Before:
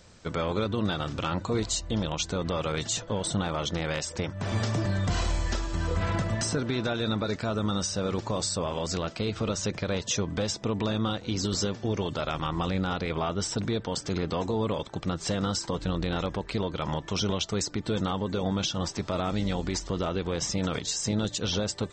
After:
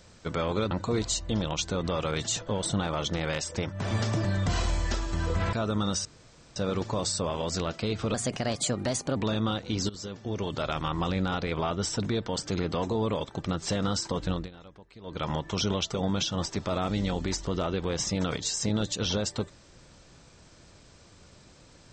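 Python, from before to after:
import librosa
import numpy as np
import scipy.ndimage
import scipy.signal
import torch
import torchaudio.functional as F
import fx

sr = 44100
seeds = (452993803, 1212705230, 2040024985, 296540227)

y = fx.edit(x, sr, fx.cut(start_s=0.71, length_s=0.61),
    fx.cut(start_s=6.14, length_s=1.27),
    fx.insert_room_tone(at_s=7.93, length_s=0.51),
    fx.speed_span(start_s=9.51, length_s=1.24, speed=1.21),
    fx.fade_in_from(start_s=11.48, length_s=0.73, floor_db=-17.0),
    fx.fade_down_up(start_s=15.91, length_s=0.88, db=-19.5, fade_s=0.18),
    fx.cut(start_s=17.53, length_s=0.84), tone=tone)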